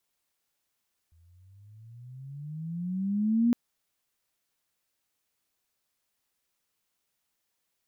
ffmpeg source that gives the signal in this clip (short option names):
-f lavfi -i "aevalsrc='pow(10,(-19+39*(t/2.41-1))/20)*sin(2*PI*80.8*2.41/(19*log(2)/12)*(exp(19*log(2)/12*t/2.41)-1))':d=2.41:s=44100"